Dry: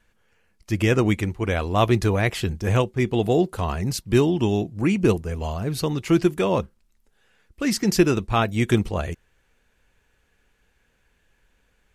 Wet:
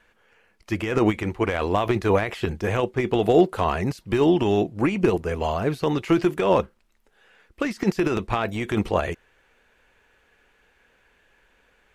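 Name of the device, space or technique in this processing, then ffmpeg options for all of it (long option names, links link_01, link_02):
de-esser from a sidechain: -filter_complex "[0:a]bass=frequency=250:gain=-11,treble=frequency=4000:gain=-9,asplit=2[link_01][link_02];[link_02]highpass=6700,apad=whole_len=526989[link_03];[link_01][link_03]sidechaincompress=threshold=-54dB:ratio=8:attack=1.6:release=30,volume=8dB"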